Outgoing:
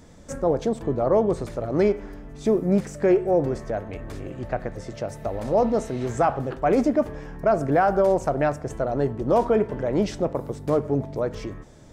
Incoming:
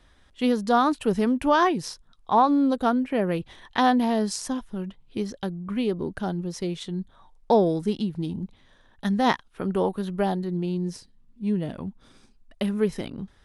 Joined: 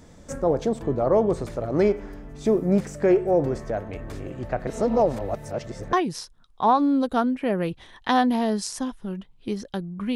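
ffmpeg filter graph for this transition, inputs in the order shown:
-filter_complex "[0:a]apad=whole_dur=10.15,atrim=end=10.15,asplit=2[a][b];[a]atrim=end=4.672[c];[b]atrim=start=4.668:end=5.932,asetpts=PTS-STARTPTS,areverse[d];[1:a]atrim=start=1.618:end=5.84[e];[c][d]acrossfade=d=0.004:c1=hsin:c2=hsin[f];[f][e]acrossfade=d=0.004:c1=hsin:c2=hsin"

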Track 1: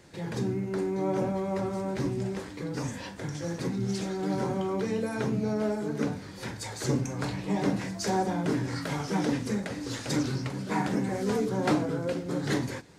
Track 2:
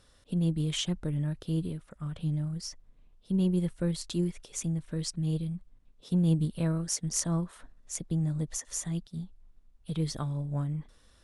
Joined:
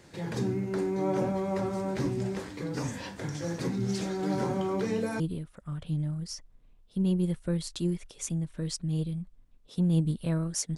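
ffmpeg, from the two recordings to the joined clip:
-filter_complex "[0:a]apad=whole_dur=10.77,atrim=end=10.77,atrim=end=5.202[a];[1:a]atrim=start=1.538:end=7.11[b];[a][b]acrossfade=d=0.004:c1=hsin:c2=hsin"

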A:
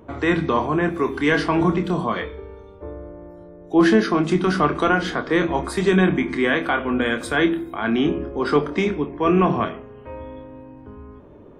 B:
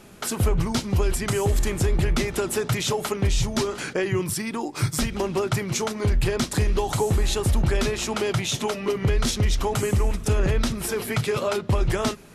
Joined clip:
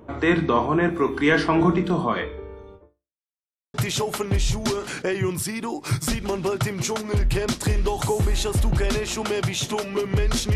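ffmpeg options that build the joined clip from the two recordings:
-filter_complex "[0:a]apad=whole_dur=10.55,atrim=end=10.55,asplit=2[a][b];[a]atrim=end=3.27,asetpts=PTS-STARTPTS,afade=t=out:st=2.75:d=0.52:c=exp[c];[b]atrim=start=3.27:end=3.74,asetpts=PTS-STARTPTS,volume=0[d];[1:a]atrim=start=2.65:end=9.46,asetpts=PTS-STARTPTS,afade=t=in:d=0.004:c=hsin[e];[c][d][e]concat=n=3:v=0:a=1"

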